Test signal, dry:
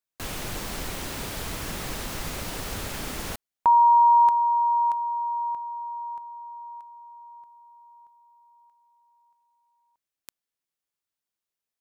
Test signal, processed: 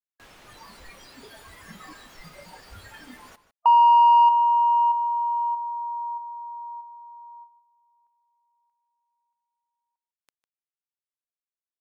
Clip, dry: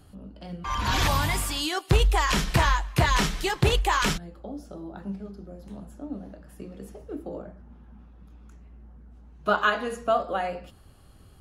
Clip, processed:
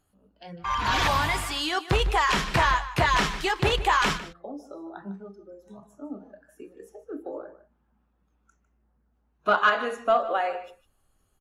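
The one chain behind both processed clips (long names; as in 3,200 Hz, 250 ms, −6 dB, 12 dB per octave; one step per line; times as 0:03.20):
noise reduction from a noise print of the clip's start 17 dB
mid-hump overdrive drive 9 dB, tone 2,500 Hz, clips at −8 dBFS
slap from a distant wall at 26 metres, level −14 dB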